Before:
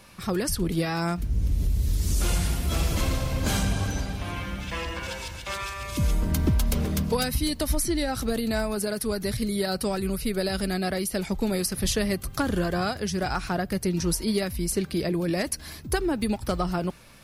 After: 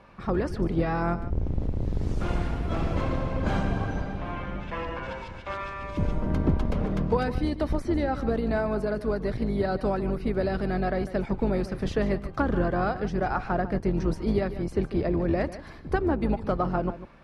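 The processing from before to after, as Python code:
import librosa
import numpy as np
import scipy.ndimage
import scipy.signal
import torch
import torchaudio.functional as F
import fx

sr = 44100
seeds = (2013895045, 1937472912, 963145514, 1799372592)

y = fx.octave_divider(x, sr, octaves=2, level_db=3.0)
y = scipy.signal.sosfilt(scipy.signal.butter(2, 1100.0, 'lowpass', fs=sr, output='sos'), y)
y = fx.tilt_eq(y, sr, slope=2.5)
y = y + 10.0 ** (-13.5 / 20.0) * np.pad(y, (int(148 * sr / 1000.0), 0))[:len(y)]
y = y * 10.0 ** (4.0 / 20.0)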